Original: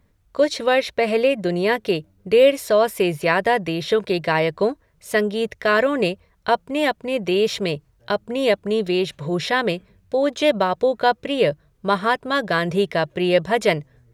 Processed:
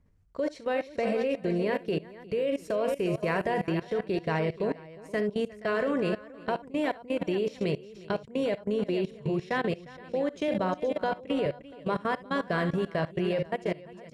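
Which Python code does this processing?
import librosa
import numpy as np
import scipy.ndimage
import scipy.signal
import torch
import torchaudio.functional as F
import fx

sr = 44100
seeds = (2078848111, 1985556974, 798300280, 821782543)

p1 = fx.fade_out_tail(x, sr, length_s=1.04)
p2 = fx.low_shelf(p1, sr, hz=400.0, db=8.0)
p3 = p2 + fx.echo_multitap(p2, sr, ms=(43, 69, 355, 473, 686), db=(-12.5, -11.5, -12.5, -11.0, -18.0), dry=0)
p4 = fx.level_steps(p3, sr, step_db=19)
p5 = scipy.signal.sosfilt(scipy.signal.butter(2, 9200.0, 'lowpass', fs=sr, output='sos'), p4)
p6 = fx.peak_eq(p5, sr, hz=3700.0, db=-6.5, octaves=0.36)
p7 = fx.band_squash(p6, sr, depth_pct=40, at=(10.48, 11.46))
y = p7 * 10.0 ** (-8.0 / 20.0)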